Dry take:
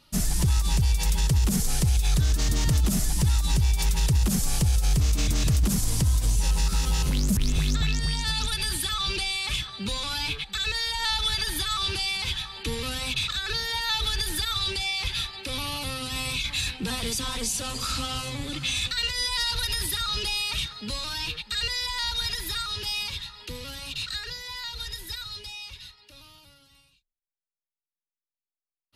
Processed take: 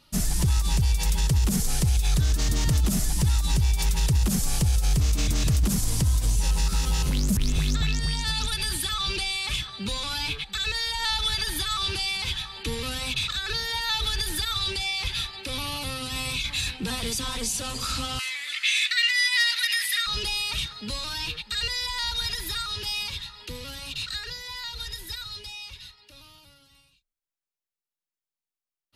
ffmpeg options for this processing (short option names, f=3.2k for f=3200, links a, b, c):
-filter_complex "[0:a]asettb=1/sr,asplit=3[a][b][c];[a]atrim=end=18.194[d];[b]atrim=start=18.19:end=20.07,asetpts=PTS-STARTPTS,afade=t=in:d=0.004:c=qsin,afade=t=out:st=1.876:d=0.004:c=qsin,highpass=f=2k:t=q:w=4.5[e];[c]atrim=start=20.066[f];[d][e]acrossfade=d=0.004:c1=hsin:c2=qsin[g];[g][f]acrossfade=d=0.004:c1=qsin:c2=hsin"